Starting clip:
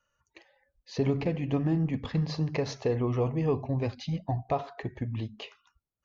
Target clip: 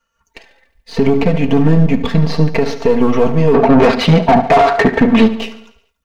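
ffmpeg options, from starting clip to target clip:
-filter_complex "[0:a]aeval=exprs='if(lt(val(0),0),0.447*val(0),val(0))':c=same,acrossover=split=3500[a][b];[b]acompressor=threshold=-54dB:ratio=4:attack=1:release=60[c];[a][c]amix=inputs=2:normalize=0,aecho=1:1:4.4:0.94,asplit=2[d][e];[e]aeval=exprs='sgn(val(0))*max(abs(val(0))-0.00501,0)':c=same,volume=-3.5dB[f];[d][f]amix=inputs=2:normalize=0,dynaudnorm=f=140:g=3:m=8dB,asplit=3[g][h][i];[g]afade=t=out:st=3.53:d=0.02[j];[h]asplit=2[k][l];[l]highpass=f=720:p=1,volume=29dB,asoftclip=type=tanh:threshold=-5dB[m];[k][m]amix=inputs=2:normalize=0,lowpass=f=1.2k:p=1,volume=-6dB,afade=t=in:st=3.53:d=0.02,afade=t=out:st=5.28:d=0.02[n];[i]afade=t=in:st=5.28:d=0.02[o];[j][n][o]amix=inputs=3:normalize=0,aecho=1:1:72|144|216|288|360|432:0.178|0.101|0.0578|0.0329|0.0188|0.0107,alimiter=level_in=8dB:limit=-1dB:release=50:level=0:latency=1,volume=-1dB"

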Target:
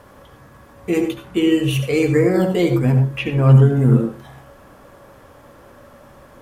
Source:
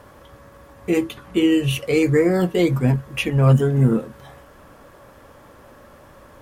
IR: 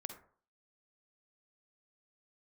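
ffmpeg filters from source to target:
-filter_complex "[0:a]asettb=1/sr,asplit=3[a][b][c];[a]atrim=end=3.014[d];[b]atrim=start=3.01:end=3.72,asetpts=PTS-STARTPTS,afade=t=in:d=0.004:c=qsin,afade=t=out:st=0.706:d=0.004:c=qsin,acrossover=split=3700[e][f];[f]acompressor=threshold=-49dB:ratio=4:attack=1:release=60[g];[e][g]amix=inputs=2:normalize=0[h];[c]atrim=start=3.716[i];[d][h]acrossfade=d=0.004:c1=hsin:c2=qsin[j];[j][i]acrossfade=d=0.004:c1=qsin:c2=hsin[k];[1:a]atrim=start_sample=2205,atrim=end_sample=4410,asetrate=29547,aresample=44100[l];[k][l]afir=irnorm=-1:irlink=0,volume=2dB"

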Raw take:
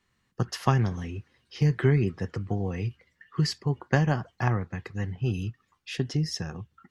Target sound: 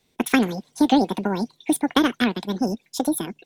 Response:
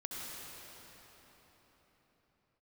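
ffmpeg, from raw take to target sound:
-af "asetrate=88200,aresample=44100,volume=5.5dB"

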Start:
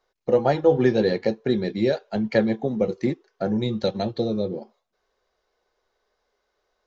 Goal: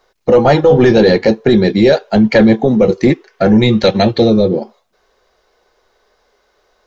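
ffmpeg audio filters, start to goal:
-filter_complex "[0:a]asettb=1/sr,asplit=3[a][b][c];[a]atrim=end=3.104[d];[b]atrim=start=3.1:end=4.3,asetpts=PTS-STARTPTS,afade=t=in:d=0.004:c=qsin,afade=t=out:st=1.196:d=0.004:c=qsin,equalizer=f=2.2k:w=1.5:g=8[e];[c]atrim=start=4.296[f];[d][e]acrossfade=d=0.004:c1=hsin:c2=qsin[g];[g][f]acrossfade=d=0.004:c1=qsin:c2=hsin,apsyclip=18dB,volume=-2.5dB"

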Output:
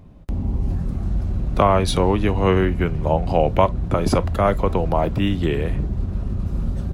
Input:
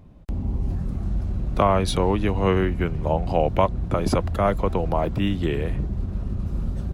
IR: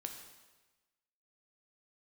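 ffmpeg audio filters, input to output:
-filter_complex "[0:a]asplit=2[a][b];[1:a]atrim=start_sample=2205,atrim=end_sample=3087,asetrate=52920,aresample=44100[c];[b][c]afir=irnorm=-1:irlink=0,volume=-2dB[d];[a][d]amix=inputs=2:normalize=0"

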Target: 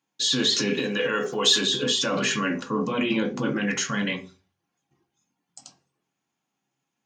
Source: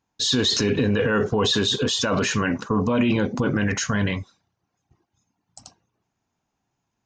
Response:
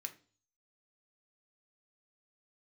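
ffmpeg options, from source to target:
-filter_complex "[0:a]asettb=1/sr,asplit=3[a][b][c];[a]atrim=end=0.734[d];[b]atrim=start=0.73:end=1.61,asetpts=PTS-STARTPTS,afade=t=in:d=0.004:c=qsin,afade=t=out:st=0.876:d=0.004:c=qsin,aemphasis=mode=production:type=bsi[e];[c]atrim=start=1.606[f];[d][e]acrossfade=d=0.004:c1=hsin:c2=qsin[g];[g][f]acrossfade=d=0.004:c1=qsin:c2=hsin[h];[1:a]atrim=start_sample=2205,asetrate=57330,aresample=44100[i];[h][i]afir=irnorm=-1:irlink=0,volume=5.5dB"

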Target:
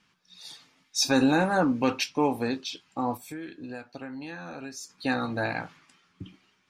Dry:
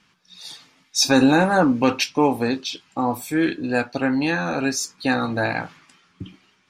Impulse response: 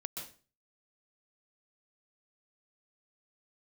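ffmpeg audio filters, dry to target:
-filter_complex "[0:a]asplit=3[a][b][c];[a]afade=t=out:st=3.16:d=0.02[d];[b]acompressor=threshold=-30dB:ratio=6,afade=t=in:st=3.16:d=0.02,afade=t=out:st=4.89:d=0.02[e];[c]afade=t=in:st=4.89:d=0.02[f];[d][e][f]amix=inputs=3:normalize=0,volume=-6.5dB"

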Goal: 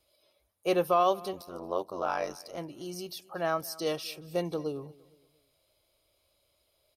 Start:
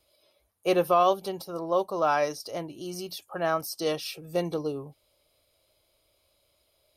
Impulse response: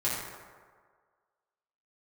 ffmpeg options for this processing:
-filter_complex "[0:a]asettb=1/sr,asplit=3[a][b][c];[a]atrim=end=1.334[d];[b]atrim=start=1.33:end=2.58,asetpts=PTS-STARTPTS,afade=t=in:d=0.004:c=qsin,afade=t=out:st=1.246:d=0.004:c=qsin,tremolo=f=90:d=0.947[e];[c]atrim=start=2.576[f];[d][e]acrossfade=d=0.004:c1=hsin:c2=qsin[g];[g][f]acrossfade=d=0.004:c1=qsin:c2=hsin,asplit=2[h][i];[i]aecho=0:1:230|460|690:0.0794|0.0294|0.0109[j];[h][j]amix=inputs=2:normalize=0,volume=-3dB"

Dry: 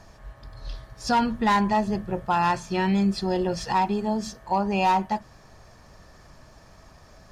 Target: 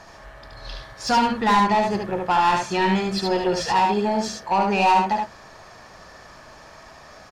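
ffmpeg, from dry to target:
-filter_complex "[0:a]asplit=2[a][b];[b]highpass=f=720:p=1,volume=15dB,asoftclip=type=tanh:threshold=-12.5dB[c];[a][c]amix=inputs=2:normalize=0,lowpass=f=4k:p=1,volume=-6dB,aecho=1:1:73:0.668"

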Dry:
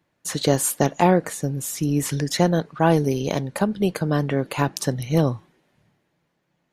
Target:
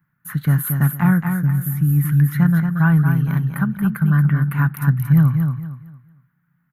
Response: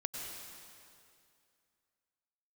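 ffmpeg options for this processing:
-filter_complex "[0:a]firequalizer=gain_entry='entry(100,0);entry(140,11);entry(340,-16);entry(500,-23);entry(990,-4);entry(1400,8);entry(2600,-12);entry(5300,-27);entry(7900,-22);entry(12000,7)':delay=0.05:min_phase=1,asplit=2[a][b];[b]aecho=0:1:229|458|687|916:0.501|0.145|0.0421|0.0122[c];[a][c]amix=inputs=2:normalize=0"

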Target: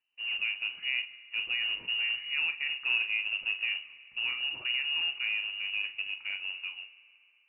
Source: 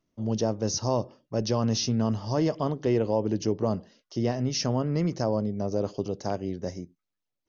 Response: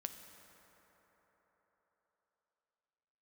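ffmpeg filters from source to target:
-filter_complex "[0:a]acrusher=bits=4:mode=log:mix=0:aa=0.000001,asplit=2[a][b];[1:a]atrim=start_sample=2205,asetrate=61740,aresample=44100,adelay=41[c];[b][c]afir=irnorm=-1:irlink=0,volume=-3.5dB[d];[a][d]amix=inputs=2:normalize=0,lowpass=f=2.6k:t=q:w=0.5098,lowpass=f=2.6k:t=q:w=0.6013,lowpass=f=2.6k:t=q:w=0.9,lowpass=f=2.6k:t=q:w=2.563,afreqshift=-3000,volume=-6.5dB"

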